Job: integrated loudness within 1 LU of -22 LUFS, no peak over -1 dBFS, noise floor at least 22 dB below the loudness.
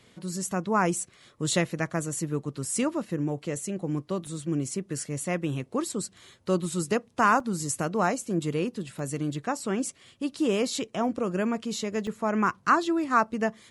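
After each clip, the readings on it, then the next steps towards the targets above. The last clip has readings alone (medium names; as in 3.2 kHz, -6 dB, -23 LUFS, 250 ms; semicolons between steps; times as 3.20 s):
dropouts 4; longest dropout 2.0 ms; loudness -28.5 LUFS; peak level -9.0 dBFS; loudness target -22.0 LUFS
-> interpolate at 4.27/7.40/8.99/12.07 s, 2 ms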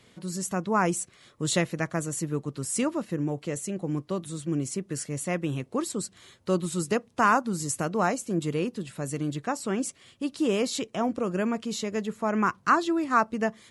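dropouts 0; loudness -28.5 LUFS; peak level -9.0 dBFS; loudness target -22.0 LUFS
-> trim +6.5 dB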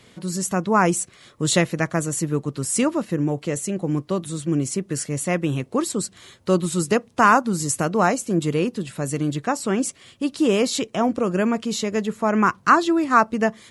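loudness -22.0 LUFS; peak level -2.5 dBFS; noise floor -53 dBFS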